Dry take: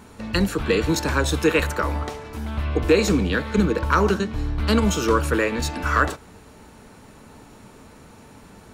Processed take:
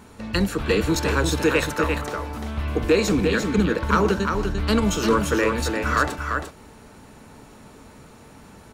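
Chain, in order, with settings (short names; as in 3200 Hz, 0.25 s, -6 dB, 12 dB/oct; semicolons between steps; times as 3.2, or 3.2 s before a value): echo 0.347 s -5.5 dB; in parallel at -4.5 dB: overloaded stage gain 12 dB; on the sum: gain -5 dB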